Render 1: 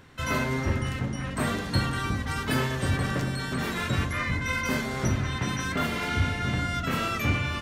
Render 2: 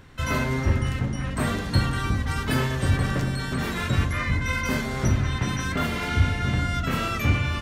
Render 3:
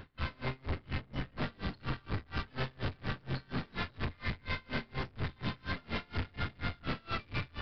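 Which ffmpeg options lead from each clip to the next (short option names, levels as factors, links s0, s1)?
-af "lowshelf=f=72:g=11.5,volume=1.12"
-af "aeval=exprs='(tanh(56.2*val(0)+0.5)-tanh(0.5))/56.2':c=same,aresample=11025,aresample=44100,aeval=exprs='val(0)*pow(10,-31*(0.5-0.5*cos(2*PI*4.2*n/s))/20)':c=same,volume=1.68"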